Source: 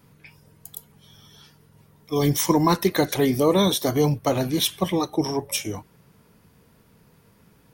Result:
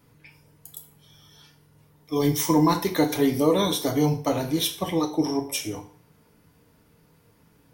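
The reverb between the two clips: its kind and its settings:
feedback delay network reverb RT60 0.48 s, low-frequency decay 0.85×, high-frequency decay 0.9×, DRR 3.5 dB
level −4 dB

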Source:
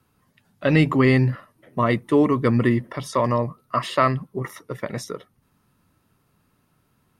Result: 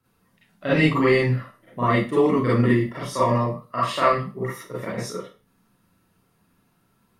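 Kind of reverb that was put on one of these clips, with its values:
four-comb reverb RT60 0.32 s, combs from 33 ms, DRR −9 dB
level −8.5 dB

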